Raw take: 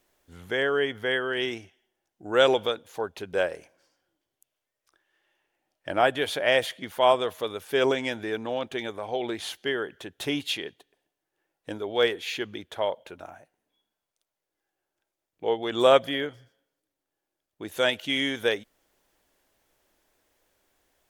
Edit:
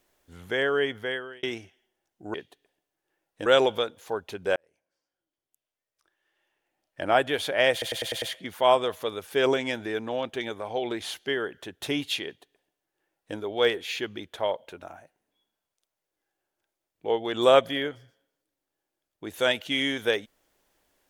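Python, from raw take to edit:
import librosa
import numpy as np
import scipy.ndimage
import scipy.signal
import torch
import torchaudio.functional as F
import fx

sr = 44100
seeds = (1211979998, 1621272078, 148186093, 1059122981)

y = fx.edit(x, sr, fx.fade_out_span(start_s=0.9, length_s=0.53),
    fx.fade_in_span(start_s=3.44, length_s=2.53),
    fx.stutter(start_s=6.6, slice_s=0.1, count=6),
    fx.duplicate(start_s=10.62, length_s=1.12, to_s=2.34), tone=tone)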